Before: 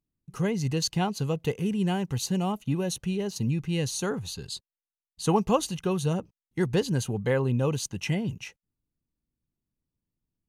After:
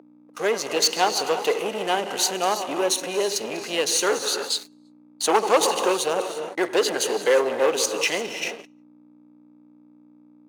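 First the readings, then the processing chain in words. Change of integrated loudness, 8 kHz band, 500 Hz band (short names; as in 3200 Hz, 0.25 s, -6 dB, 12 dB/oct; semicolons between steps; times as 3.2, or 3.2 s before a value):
+5.5 dB, +10.5 dB, +8.0 dB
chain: reverse delay 0.102 s, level -13.5 dB; non-linear reverb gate 0.37 s rising, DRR 10 dB; expander -36 dBFS; sample leveller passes 3; hum 60 Hz, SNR 11 dB; high shelf 7900 Hz -3.5 dB; in parallel at -9 dB: hard clip -26 dBFS, distortion -5 dB; on the sum: HPF 400 Hz 24 dB/oct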